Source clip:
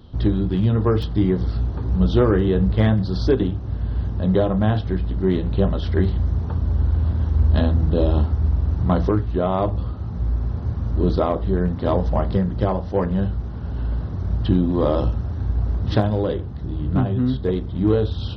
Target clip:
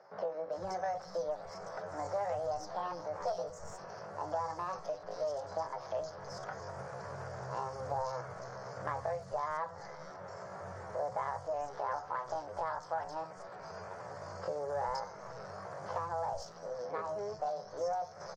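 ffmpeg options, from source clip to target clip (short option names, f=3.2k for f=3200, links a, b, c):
-filter_complex "[0:a]aderivative,aeval=exprs='clip(val(0),-1,0.00562)':c=same,acrossover=split=2900[a][b];[b]acompressor=threshold=-56dB:ratio=4:attack=1:release=60[c];[a][c]amix=inputs=2:normalize=0,firequalizer=gain_entry='entry(110,0);entry(160,-13);entry(320,12);entry(940,2);entry(1600,-17);entry(2800,-2);entry(5600,-19)':delay=0.05:min_phase=1,asetrate=72056,aresample=44100,atempo=0.612027,acompressor=threshold=-48dB:ratio=3,acrossover=split=160|3700[d][e][f];[d]adelay=450[g];[f]adelay=520[h];[g][e][h]amix=inputs=3:normalize=0,volume=12dB"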